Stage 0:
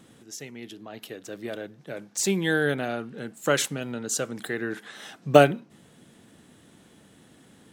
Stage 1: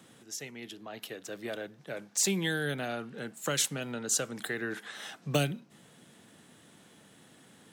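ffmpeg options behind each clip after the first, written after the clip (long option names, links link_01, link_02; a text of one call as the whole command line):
ffmpeg -i in.wav -filter_complex "[0:a]highpass=130,equalizer=frequency=290:width=0.83:gain=-5,acrossover=split=260|3000[link_01][link_02][link_03];[link_02]acompressor=threshold=-32dB:ratio=6[link_04];[link_01][link_04][link_03]amix=inputs=3:normalize=0" out.wav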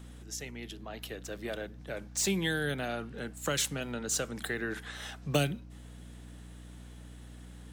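ffmpeg -i in.wav -filter_complex "[0:a]aeval=exprs='val(0)+0.00447*(sin(2*PI*60*n/s)+sin(2*PI*2*60*n/s)/2+sin(2*PI*3*60*n/s)/3+sin(2*PI*4*60*n/s)/4+sin(2*PI*5*60*n/s)/5)':channel_layout=same,acrossover=split=4200[link_01][link_02];[link_02]asoftclip=type=tanh:threshold=-27dB[link_03];[link_01][link_03]amix=inputs=2:normalize=0" out.wav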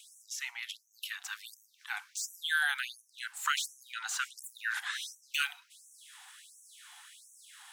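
ffmpeg -i in.wav -filter_complex "[0:a]acrossover=split=2600[link_01][link_02];[link_02]acompressor=threshold=-44dB:ratio=4:attack=1:release=60[link_03];[link_01][link_03]amix=inputs=2:normalize=0,aeval=exprs='val(0)+0.00501*sin(2*PI*600*n/s)':channel_layout=same,afftfilt=real='re*gte(b*sr/1024,690*pow(5700/690,0.5+0.5*sin(2*PI*1.4*pts/sr)))':imag='im*gte(b*sr/1024,690*pow(5700/690,0.5+0.5*sin(2*PI*1.4*pts/sr)))':win_size=1024:overlap=0.75,volume=8dB" out.wav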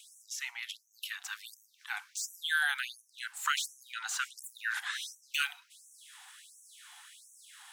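ffmpeg -i in.wav -af anull out.wav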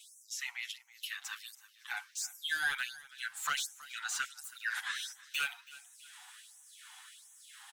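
ffmpeg -i in.wav -filter_complex "[0:a]asoftclip=type=tanh:threshold=-24.5dB,aecho=1:1:325|650|975:0.1|0.038|0.0144,asplit=2[link_01][link_02];[link_02]adelay=7.8,afreqshift=0.49[link_03];[link_01][link_03]amix=inputs=2:normalize=1,volume=2.5dB" out.wav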